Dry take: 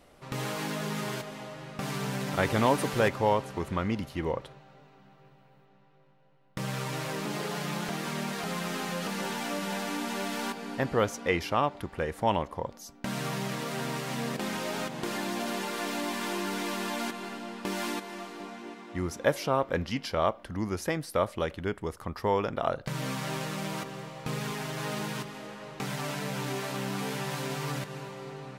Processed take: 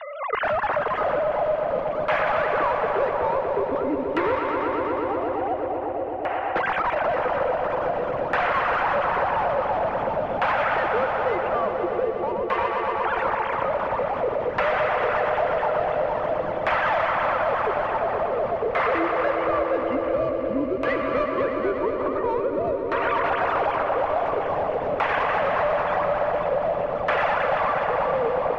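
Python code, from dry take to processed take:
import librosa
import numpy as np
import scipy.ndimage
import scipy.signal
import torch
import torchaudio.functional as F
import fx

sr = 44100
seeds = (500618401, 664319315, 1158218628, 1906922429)

p1 = fx.sine_speech(x, sr)
p2 = fx.recorder_agc(p1, sr, target_db=-18.5, rise_db_per_s=28.0, max_gain_db=30)
p3 = fx.peak_eq(p2, sr, hz=240.0, db=-12.5, octaves=1.4)
p4 = np.clip(p3, -10.0 ** (-30.0 / 20.0), 10.0 ** (-30.0 / 20.0))
p5 = p4 + fx.echo_swell(p4, sr, ms=121, loudest=5, wet_db=-9.0, dry=0)
p6 = fx.filter_lfo_lowpass(p5, sr, shape='saw_down', hz=0.48, low_hz=440.0, high_hz=2100.0, q=0.83)
p7 = p6 + 10.0 ** (-21.5 / 20.0) * np.pad(p6, (int(85 * sr / 1000.0), 0))[:len(p6)]
p8 = fx.band_squash(p7, sr, depth_pct=70)
y = p8 * 10.0 ** (8.0 / 20.0)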